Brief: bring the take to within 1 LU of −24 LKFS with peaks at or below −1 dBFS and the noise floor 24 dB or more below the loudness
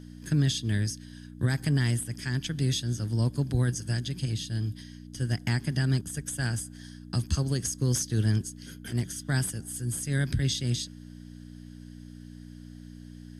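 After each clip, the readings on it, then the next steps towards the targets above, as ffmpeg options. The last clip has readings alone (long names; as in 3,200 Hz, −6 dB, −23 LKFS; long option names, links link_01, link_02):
mains hum 60 Hz; hum harmonics up to 300 Hz; level of the hum −44 dBFS; integrated loudness −29.5 LKFS; sample peak −15.5 dBFS; target loudness −24.0 LKFS
→ -af "bandreject=frequency=60:width_type=h:width=4,bandreject=frequency=120:width_type=h:width=4,bandreject=frequency=180:width_type=h:width=4,bandreject=frequency=240:width_type=h:width=4,bandreject=frequency=300:width_type=h:width=4"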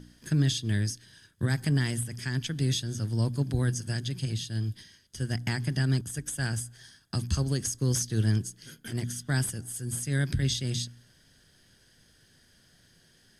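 mains hum none found; integrated loudness −30.0 LKFS; sample peak −15.5 dBFS; target loudness −24.0 LKFS
→ -af "volume=6dB"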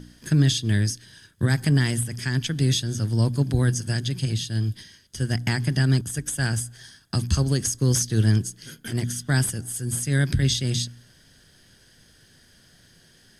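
integrated loudness −24.0 LKFS; sample peak −9.5 dBFS; background noise floor −56 dBFS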